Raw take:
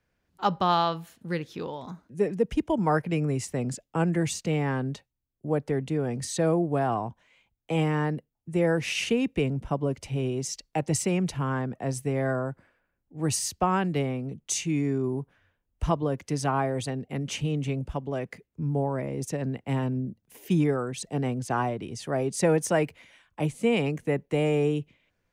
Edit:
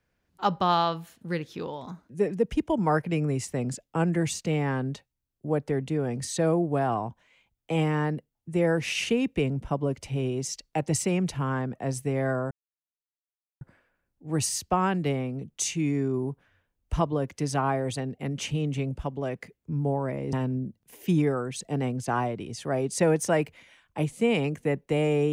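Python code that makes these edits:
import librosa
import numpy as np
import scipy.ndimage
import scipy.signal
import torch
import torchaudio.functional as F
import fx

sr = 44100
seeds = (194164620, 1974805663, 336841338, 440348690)

y = fx.edit(x, sr, fx.insert_silence(at_s=12.51, length_s=1.1),
    fx.cut(start_s=19.23, length_s=0.52), tone=tone)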